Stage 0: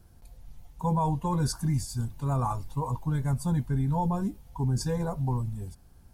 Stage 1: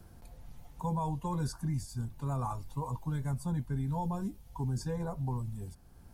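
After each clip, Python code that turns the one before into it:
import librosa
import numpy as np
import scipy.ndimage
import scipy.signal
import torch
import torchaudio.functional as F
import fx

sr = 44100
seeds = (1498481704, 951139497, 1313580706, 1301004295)

y = fx.band_squash(x, sr, depth_pct=40)
y = F.gain(torch.from_numpy(y), -6.5).numpy()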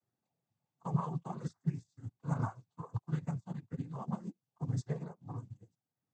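y = fx.noise_vocoder(x, sr, seeds[0], bands=16)
y = fx.upward_expand(y, sr, threshold_db=-48.0, expansion=2.5)
y = F.gain(torch.from_numpy(y), 2.0).numpy()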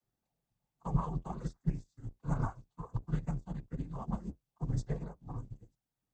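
y = fx.octave_divider(x, sr, octaves=2, level_db=-3.0)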